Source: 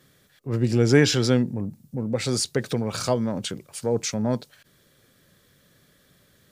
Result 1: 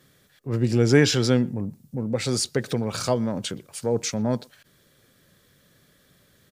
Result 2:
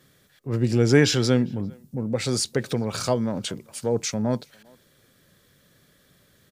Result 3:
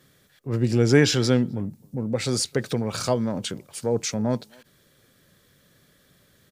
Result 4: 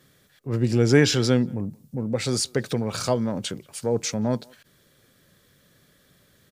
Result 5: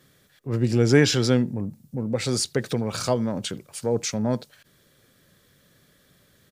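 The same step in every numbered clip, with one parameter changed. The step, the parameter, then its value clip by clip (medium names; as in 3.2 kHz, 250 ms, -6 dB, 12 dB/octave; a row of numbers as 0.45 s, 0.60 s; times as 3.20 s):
speakerphone echo, time: 120 ms, 400 ms, 260 ms, 180 ms, 80 ms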